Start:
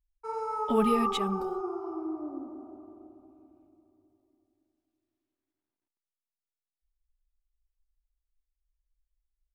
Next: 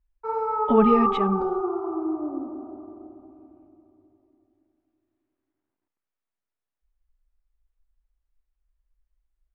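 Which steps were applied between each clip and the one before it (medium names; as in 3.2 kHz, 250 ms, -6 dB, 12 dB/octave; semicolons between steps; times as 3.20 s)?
low-pass 1.9 kHz 12 dB/octave; trim +7.5 dB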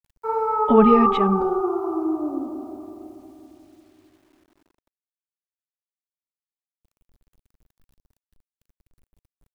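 bit crusher 11-bit; trim +3.5 dB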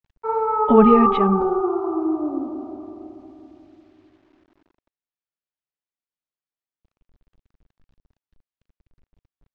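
distance through air 180 m; trim +2 dB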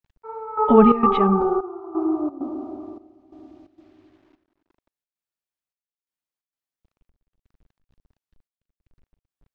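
trance gate "xx...xxx.xxx" 131 bpm -12 dB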